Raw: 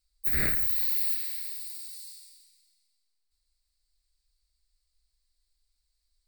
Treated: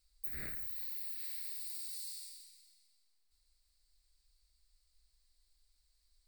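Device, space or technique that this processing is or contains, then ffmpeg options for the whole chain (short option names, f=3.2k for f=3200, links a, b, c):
serial compression, leveller first: -af "acompressor=threshold=-29dB:ratio=6,acompressor=threshold=-42dB:ratio=6,volume=2.5dB"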